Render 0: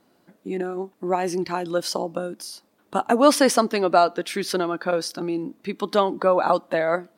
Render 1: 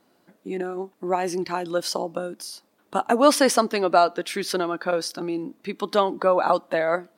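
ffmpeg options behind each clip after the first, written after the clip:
ffmpeg -i in.wav -af "lowshelf=frequency=240:gain=-4.5" out.wav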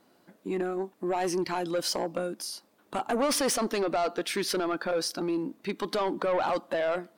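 ffmpeg -i in.wav -af "alimiter=limit=-14.5dB:level=0:latency=1:release=21,asoftclip=type=tanh:threshold=-21.5dB" out.wav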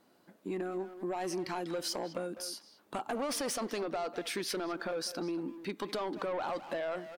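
ffmpeg -i in.wav -filter_complex "[0:a]asplit=2[link_01][link_02];[link_02]adelay=200,highpass=300,lowpass=3400,asoftclip=type=hard:threshold=-31dB,volume=-10dB[link_03];[link_01][link_03]amix=inputs=2:normalize=0,acompressor=threshold=-29dB:ratio=6,volume=-3.5dB" out.wav

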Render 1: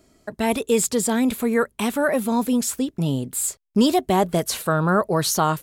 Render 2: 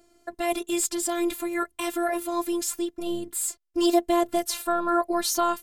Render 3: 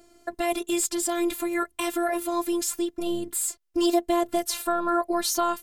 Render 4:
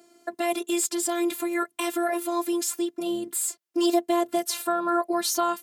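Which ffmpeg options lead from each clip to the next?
ffmpeg -i in.wav -af "afftfilt=real='hypot(re,im)*cos(PI*b)':imag='0':win_size=512:overlap=0.75" out.wav
ffmpeg -i in.wav -af "acompressor=threshold=-33dB:ratio=1.5,volume=4.5dB" out.wav
ffmpeg -i in.wav -af "highpass=frequency=160:width=0.5412,highpass=frequency=160:width=1.3066" out.wav

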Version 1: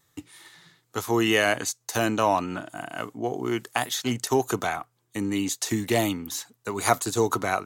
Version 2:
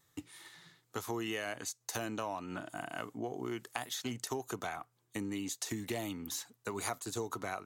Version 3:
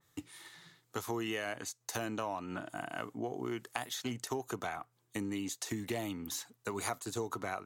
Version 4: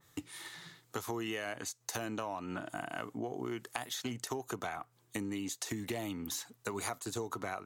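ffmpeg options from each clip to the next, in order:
ffmpeg -i in.wav -af "acompressor=threshold=-31dB:ratio=5,volume=-4.5dB" out.wav
ffmpeg -i in.wav -af "adynamicequalizer=threshold=0.002:dfrequency=3200:dqfactor=0.7:tfrequency=3200:tqfactor=0.7:attack=5:release=100:ratio=0.375:range=2:mode=cutabove:tftype=highshelf,volume=1dB" out.wav
ffmpeg -i in.wav -af "acompressor=threshold=-46dB:ratio=2,volume=6dB" out.wav

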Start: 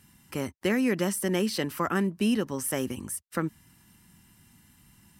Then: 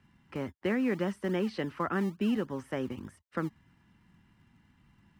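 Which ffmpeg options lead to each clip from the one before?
ffmpeg -i in.wav -filter_complex "[0:a]lowpass=2400,acrossover=split=150[link_01][link_02];[link_01]acrusher=samples=35:mix=1:aa=0.000001:lfo=1:lforange=21:lforate=3.5[link_03];[link_03][link_02]amix=inputs=2:normalize=0,volume=-3.5dB" out.wav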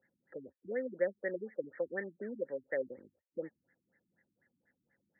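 ffmpeg -i in.wav -filter_complex "[0:a]asplit=3[link_01][link_02][link_03];[link_01]bandpass=frequency=530:width_type=q:width=8,volume=0dB[link_04];[link_02]bandpass=frequency=1840:width_type=q:width=8,volume=-6dB[link_05];[link_03]bandpass=frequency=2480:width_type=q:width=8,volume=-9dB[link_06];[link_04][link_05][link_06]amix=inputs=3:normalize=0,crystalizer=i=8.5:c=0,afftfilt=real='re*lt(b*sr/1024,320*pow(2300/320,0.5+0.5*sin(2*PI*4.1*pts/sr)))':imag='im*lt(b*sr/1024,320*pow(2300/320,0.5+0.5*sin(2*PI*4.1*pts/sr)))':win_size=1024:overlap=0.75,volume=5dB" out.wav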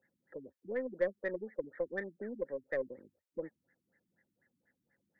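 ffmpeg -i in.wav -af "aeval=exprs='0.106*(cos(1*acos(clip(val(0)/0.106,-1,1)))-cos(1*PI/2))+0.00266*(cos(6*acos(clip(val(0)/0.106,-1,1)))-cos(6*PI/2))+0.00075*(cos(7*acos(clip(val(0)/0.106,-1,1)))-cos(7*PI/2))':channel_layout=same" out.wav

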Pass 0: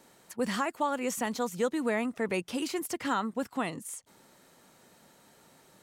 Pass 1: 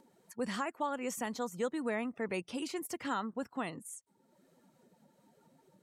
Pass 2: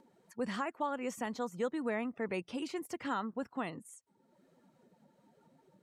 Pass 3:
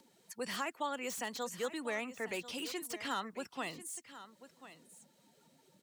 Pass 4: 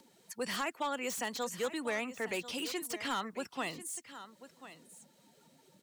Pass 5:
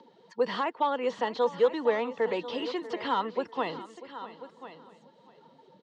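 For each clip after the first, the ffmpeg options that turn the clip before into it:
ffmpeg -i in.wav -af "afftdn=noise_reduction=18:noise_floor=-52,acompressor=mode=upward:threshold=-51dB:ratio=2.5,volume=-5.5dB" out.wav
ffmpeg -i in.wav -af "highshelf=frequency=6000:gain=-10.5" out.wav
ffmpeg -i in.wav -filter_complex "[0:a]acrossover=split=300|460|2600[link_01][link_02][link_03][link_04];[link_01]alimiter=level_in=22.5dB:limit=-24dB:level=0:latency=1,volume=-22.5dB[link_05];[link_04]aeval=exprs='0.0141*sin(PI/2*3.55*val(0)/0.0141)':channel_layout=same[link_06];[link_05][link_02][link_03][link_06]amix=inputs=4:normalize=0,aecho=1:1:1041:0.188,volume=-2.5dB" out.wav
ffmpeg -i in.wav -af "asoftclip=type=hard:threshold=-31dB,volume=3dB" out.wav
ffmpeg -i in.wav -af "highpass=110,equalizer=frequency=470:width_type=q:width=4:gain=10,equalizer=frequency=950:width_type=q:width=4:gain=9,equalizer=frequency=1500:width_type=q:width=4:gain=-3,equalizer=frequency=2400:width_type=q:width=4:gain=-9,lowpass=frequency=3900:width=0.5412,lowpass=frequency=3900:width=1.3066,aecho=1:1:642|1284:0.15|0.0374,volume=4dB" out.wav

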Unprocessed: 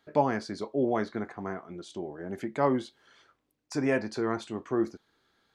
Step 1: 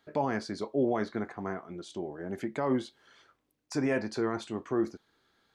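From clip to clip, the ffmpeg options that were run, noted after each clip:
ffmpeg -i in.wav -af "alimiter=limit=-19dB:level=0:latency=1:release=27" out.wav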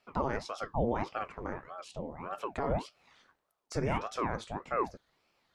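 ffmpeg -i in.wav -af "aeval=exprs='val(0)*sin(2*PI*550*n/s+550*0.8/1.7*sin(2*PI*1.7*n/s))':channel_layout=same" out.wav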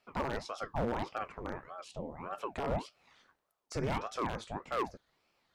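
ffmpeg -i in.wav -af "aeval=exprs='0.0668*(abs(mod(val(0)/0.0668+3,4)-2)-1)':channel_layout=same,volume=-1.5dB" out.wav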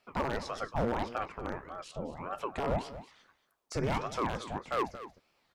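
ffmpeg -i in.wav -af "aecho=1:1:228:0.2,volume=2.5dB" out.wav

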